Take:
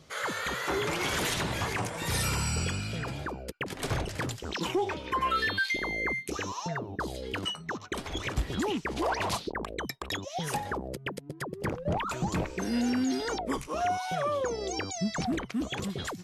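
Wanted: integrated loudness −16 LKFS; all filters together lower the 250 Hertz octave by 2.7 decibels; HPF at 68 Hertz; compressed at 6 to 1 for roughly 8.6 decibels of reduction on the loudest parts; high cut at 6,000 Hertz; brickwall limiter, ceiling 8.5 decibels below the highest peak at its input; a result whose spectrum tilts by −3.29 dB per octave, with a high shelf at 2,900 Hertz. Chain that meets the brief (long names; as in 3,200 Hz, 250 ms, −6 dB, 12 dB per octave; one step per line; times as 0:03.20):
high-pass filter 68 Hz
low-pass filter 6,000 Hz
parametric band 250 Hz −3.5 dB
high-shelf EQ 2,900 Hz +8 dB
downward compressor 6 to 1, threshold −33 dBFS
level +21 dB
brickwall limiter −6.5 dBFS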